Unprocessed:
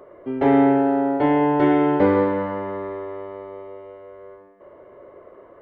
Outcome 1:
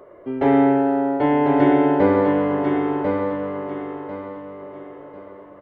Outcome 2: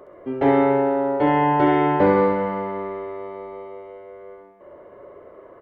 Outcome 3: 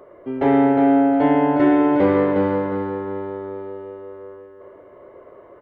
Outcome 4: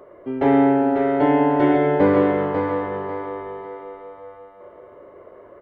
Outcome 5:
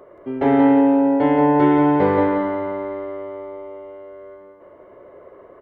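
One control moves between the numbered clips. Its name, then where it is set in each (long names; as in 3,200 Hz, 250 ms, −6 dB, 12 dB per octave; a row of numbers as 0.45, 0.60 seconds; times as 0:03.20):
repeating echo, delay time: 1,045, 67, 358, 544, 177 milliseconds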